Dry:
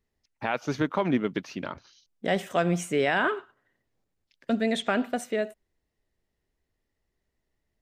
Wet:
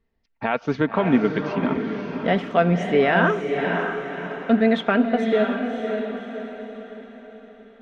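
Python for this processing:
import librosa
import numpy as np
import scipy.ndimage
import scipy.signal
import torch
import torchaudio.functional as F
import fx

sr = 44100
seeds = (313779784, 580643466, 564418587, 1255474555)

y = fx.air_absorb(x, sr, metres=250.0)
y = y + 0.36 * np.pad(y, (int(4.4 * sr / 1000.0), 0))[:len(y)]
y = fx.echo_diffused(y, sr, ms=581, feedback_pct=45, wet_db=-5.0)
y = F.gain(torch.from_numpy(y), 6.0).numpy()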